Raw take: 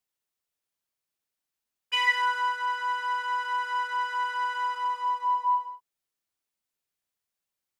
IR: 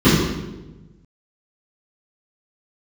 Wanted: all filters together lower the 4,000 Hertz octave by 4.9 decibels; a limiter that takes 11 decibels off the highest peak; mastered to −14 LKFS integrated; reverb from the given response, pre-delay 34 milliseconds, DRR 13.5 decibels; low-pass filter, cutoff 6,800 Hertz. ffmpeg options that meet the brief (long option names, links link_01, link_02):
-filter_complex "[0:a]lowpass=6800,equalizer=frequency=4000:width_type=o:gain=-8,alimiter=level_in=2dB:limit=-24dB:level=0:latency=1,volume=-2dB,asplit=2[link_01][link_02];[1:a]atrim=start_sample=2205,adelay=34[link_03];[link_02][link_03]afir=irnorm=-1:irlink=0,volume=-39dB[link_04];[link_01][link_04]amix=inputs=2:normalize=0,volume=18dB"